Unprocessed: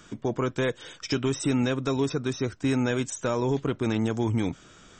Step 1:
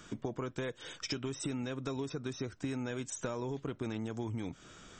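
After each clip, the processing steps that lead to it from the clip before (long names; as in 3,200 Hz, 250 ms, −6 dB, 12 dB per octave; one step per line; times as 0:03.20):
downward compressor 10 to 1, threshold −32 dBFS, peak gain reduction 11.5 dB
level −2 dB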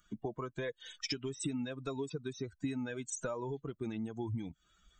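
spectral dynamics exaggerated over time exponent 2
level +3.5 dB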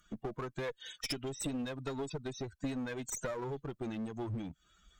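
asymmetric clip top −41 dBFS
level +2.5 dB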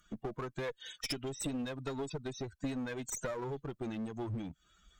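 no processing that can be heard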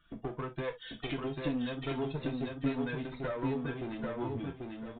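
repeating echo 791 ms, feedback 24%, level −3.5 dB
on a send at −3 dB: convolution reverb, pre-delay 3 ms
on the sum: downsampling to 8,000 Hz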